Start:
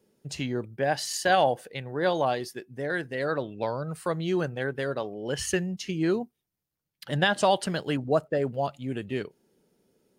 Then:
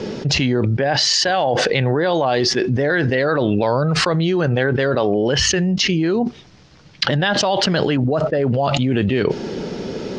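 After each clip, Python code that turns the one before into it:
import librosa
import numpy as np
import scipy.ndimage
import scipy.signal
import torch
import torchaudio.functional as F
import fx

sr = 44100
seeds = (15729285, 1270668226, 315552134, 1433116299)

y = scipy.signal.sosfilt(scipy.signal.butter(6, 5800.0, 'lowpass', fs=sr, output='sos'), x)
y = fx.env_flatten(y, sr, amount_pct=100)
y = F.gain(torch.from_numpy(y), 1.5).numpy()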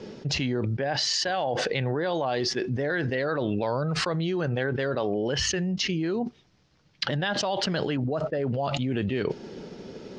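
y = fx.upward_expand(x, sr, threshold_db=-32.0, expansion=1.5)
y = F.gain(torch.from_numpy(y), -8.5).numpy()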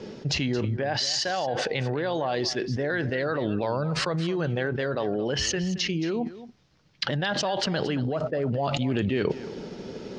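y = fx.rider(x, sr, range_db=4, speed_s=2.0)
y = y + 10.0 ** (-15.0 / 20.0) * np.pad(y, (int(223 * sr / 1000.0), 0))[:len(y)]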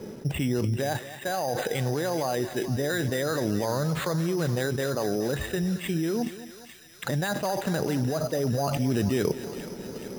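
y = fx.low_shelf(x, sr, hz=400.0, db=3.0)
y = np.repeat(scipy.signal.resample_poly(y, 1, 8), 8)[:len(y)]
y = fx.echo_thinned(y, sr, ms=427, feedback_pct=78, hz=1100.0, wet_db=-11.0)
y = F.gain(torch.from_numpy(y), -1.5).numpy()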